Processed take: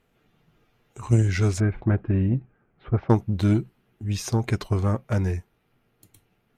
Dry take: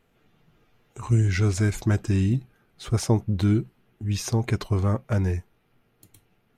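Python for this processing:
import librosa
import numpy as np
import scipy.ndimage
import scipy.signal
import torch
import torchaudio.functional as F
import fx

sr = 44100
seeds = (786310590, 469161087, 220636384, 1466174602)

y = fx.cheby_harmonics(x, sr, harmonics=(3,), levels_db=(-17,), full_scale_db=-9.5)
y = fx.bessel_lowpass(y, sr, hz=1600.0, order=6, at=(1.6, 3.1))
y = y * librosa.db_to_amplitude(3.5)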